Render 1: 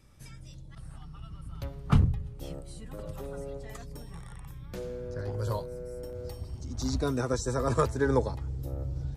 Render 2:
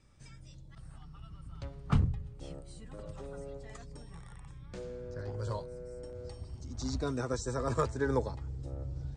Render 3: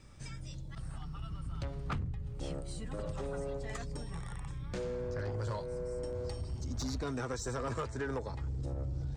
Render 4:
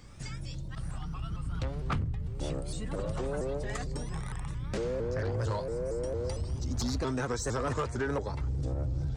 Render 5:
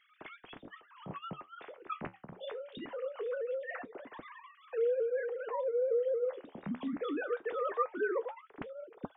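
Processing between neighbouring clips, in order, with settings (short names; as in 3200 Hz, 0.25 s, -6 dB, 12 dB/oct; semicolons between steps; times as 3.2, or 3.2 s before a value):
Chebyshev low-pass 9300 Hz, order 10; gain -4 dB
dynamic EQ 2000 Hz, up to +5 dB, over -55 dBFS, Q 1; compressor 6:1, threshold -39 dBFS, peak gain reduction 16.5 dB; soft clip -37.5 dBFS, distortion -16 dB; gain +8 dB
shaped vibrato saw up 4.4 Hz, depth 160 cents; gain +5 dB
sine-wave speech; flange 0.22 Hz, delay 5.2 ms, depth 8.8 ms, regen -60%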